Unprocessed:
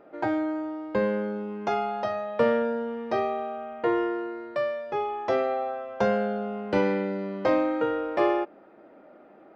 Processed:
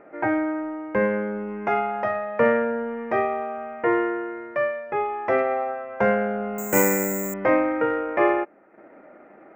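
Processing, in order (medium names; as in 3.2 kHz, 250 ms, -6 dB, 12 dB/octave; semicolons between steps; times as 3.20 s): 6.58–7.34 s: careless resampling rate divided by 6×, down filtered, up zero stuff; resonant high shelf 2.9 kHz -11 dB, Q 3; transient shaper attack -2 dB, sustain -7 dB; trim +3.5 dB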